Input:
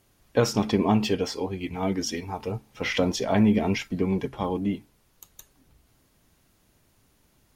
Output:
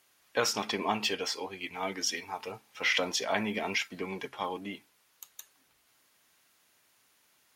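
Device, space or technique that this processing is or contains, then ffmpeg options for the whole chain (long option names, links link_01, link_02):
filter by subtraction: -filter_complex "[0:a]asplit=2[link_01][link_02];[link_02]lowpass=1800,volume=-1[link_03];[link_01][link_03]amix=inputs=2:normalize=0"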